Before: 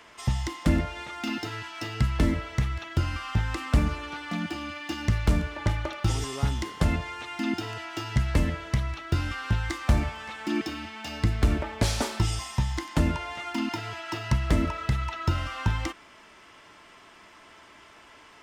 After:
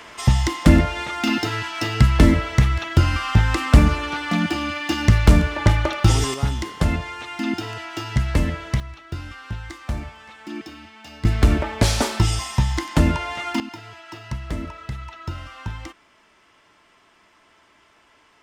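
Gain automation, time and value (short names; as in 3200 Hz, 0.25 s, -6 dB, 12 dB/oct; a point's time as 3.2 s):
+10 dB
from 6.34 s +4 dB
from 8.8 s -5 dB
from 11.25 s +7 dB
from 13.6 s -5 dB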